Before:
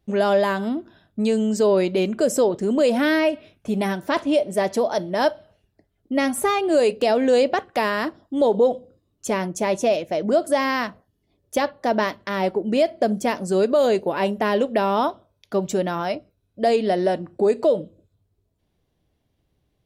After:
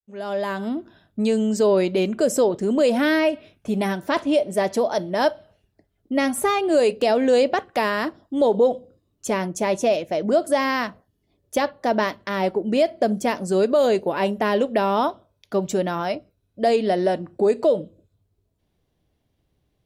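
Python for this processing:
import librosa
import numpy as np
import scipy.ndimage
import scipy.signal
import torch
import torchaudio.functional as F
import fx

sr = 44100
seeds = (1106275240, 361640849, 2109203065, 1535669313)

y = fx.fade_in_head(x, sr, length_s=0.84)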